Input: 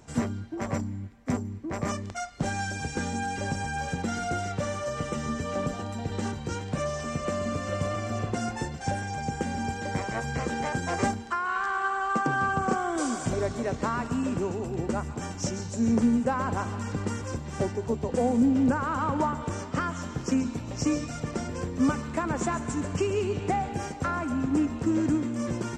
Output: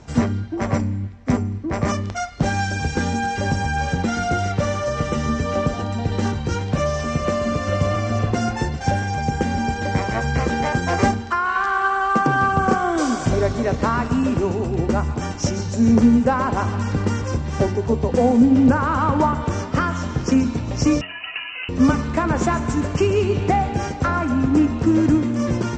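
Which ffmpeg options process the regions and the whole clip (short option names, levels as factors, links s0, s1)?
-filter_complex "[0:a]asettb=1/sr,asplit=3[s0][s1][s2];[s0]atrim=end=21.014[s3];[s1]atrim=start=21.01:end=21.69,asetpts=PTS-STARTPTS,afade=t=in:d=0.004:c=qsin,afade=t=out:st=0.676:d=0.004:c=qsin,highpass=f=590:p=1,lowpass=f=2600:t=q:w=0.5098,lowpass=f=2600:t=q:w=0.6013,lowpass=f=2600:t=q:w=0.9,lowpass=f=2600:t=q:w=2.563,afreqshift=-3100[s4];[s2]atrim=start=21.686[s5];[s3][s4]acrossfade=d=0.004:c1=hsin:c2=qsin[s6];[s6][s5]acrossfade=d=0.004:c1=qsin:c2=hsin,lowpass=f=6400:w=0.5412,lowpass=f=6400:w=1.3066,equalizer=f=64:t=o:w=1.3:g=6,bandreject=f=92.5:t=h:w=4,bandreject=f=185:t=h:w=4,bandreject=f=277.5:t=h:w=4,bandreject=f=370:t=h:w=4,bandreject=f=462.5:t=h:w=4,bandreject=f=555:t=h:w=4,bandreject=f=647.5:t=h:w=4,bandreject=f=740:t=h:w=4,bandreject=f=832.5:t=h:w=4,bandreject=f=925:t=h:w=4,bandreject=f=1017.5:t=h:w=4,bandreject=f=1110:t=h:w=4,bandreject=f=1202.5:t=h:w=4,bandreject=f=1295:t=h:w=4,bandreject=f=1387.5:t=h:w=4,bandreject=f=1480:t=h:w=4,bandreject=f=1572.5:t=h:w=4,bandreject=f=1665:t=h:w=4,bandreject=f=1757.5:t=h:w=4,bandreject=f=1850:t=h:w=4,bandreject=f=1942.5:t=h:w=4,bandreject=f=2035:t=h:w=4,bandreject=f=2127.5:t=h:w=4,bandreject=f=2220:t=h:w=4,bandreject=f=2312.5:t=h:w=4,bandreject=f=2405:t=h:w=4,bandreject=f=2497.5:t=h:w=4,bandreject=f=2590:t=h:w=4,bandreject=f=2682.5:t=h:w=4,bandreject=f=2775:t=h:w=4,bandreject=f=2867.5:t=h:w=4,bandreject=f=2960:t=h:w=4,bandreject=f=3052.5:t=h:w=4,bandreject=f=3145:t=h:w=4,bandreject=f=3237.5:t=h:w=4,bandreject=f=3330:t=h:w=4,bandreject=f=3422.5:t=h:w=4,bandreject=f=3515:t=h:w=4,bandreject=f=3607.5:t=h:w=4,volume=2.66"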